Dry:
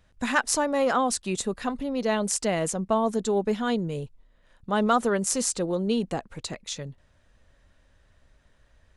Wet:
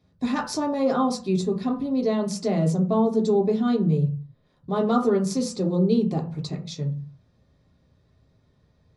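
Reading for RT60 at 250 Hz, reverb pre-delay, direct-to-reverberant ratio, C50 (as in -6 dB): n/a, 3 ms, -1.0 dB, 10.5 dB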